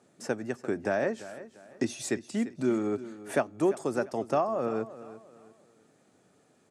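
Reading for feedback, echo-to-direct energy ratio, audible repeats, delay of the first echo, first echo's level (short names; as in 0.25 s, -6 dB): 34%, -15.0 dB, 3, 0.345 s, -15.5 dB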